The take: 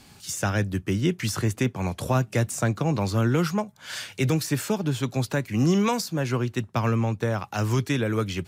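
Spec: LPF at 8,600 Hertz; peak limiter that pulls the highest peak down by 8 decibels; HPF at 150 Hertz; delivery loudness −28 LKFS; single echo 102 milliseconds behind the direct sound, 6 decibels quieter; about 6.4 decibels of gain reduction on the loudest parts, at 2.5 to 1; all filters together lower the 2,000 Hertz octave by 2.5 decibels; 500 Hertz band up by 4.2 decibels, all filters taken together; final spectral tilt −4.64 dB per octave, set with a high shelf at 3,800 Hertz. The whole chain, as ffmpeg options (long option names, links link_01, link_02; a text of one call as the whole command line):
ffmpeg -i in.wav -af "highpass=150,lowpass=8600,equalizer=frequency=500:width_type=o:gain=5.5,equalizer=frequency=2000:width_type=o:gain=-5,highshelf=frequency=3800:gain=5,acompressor=threshold=-27dB:ratio=2.5,alimiter=limit=-22dB:level=0:latency=1,aecho=1:1:102:0.501,volume=3dB" out.wav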